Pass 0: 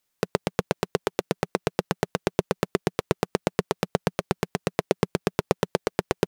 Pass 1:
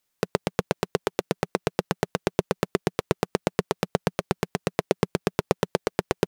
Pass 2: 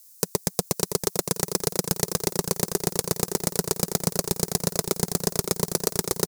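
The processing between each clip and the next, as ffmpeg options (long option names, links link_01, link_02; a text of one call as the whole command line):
ffmpeg -i in.wav -af anull out.wav
ffmpeg -i in.wav -filter_complex "[0:a]volume=20.5dB,asoftclip=hard,volume=-20.5dB,aexciter=amount=8.7:drive=5.8:freq=4400,asplit=2[link_01][link_02];[link_02]aecho=0:1:566|1132|1698|2264|2830:0.447|0.192|0.0826|0.0355|0.0153[link_03];[link_01][link_03]amix=inputs=2:normalize=0,volume=4dB" out.wav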